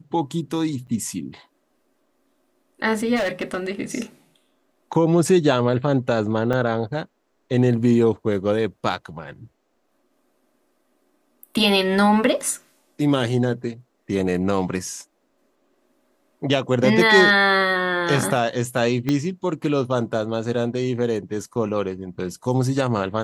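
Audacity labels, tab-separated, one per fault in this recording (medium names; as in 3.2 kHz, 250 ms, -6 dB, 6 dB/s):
0.870000	0.880000	dropout 7.7 ms
3.150000	3.590000	clipped -20 dBFS
6.530000	6.530000	dropout 4.4 ms
19.090000	19.090000	pop -10 dBFS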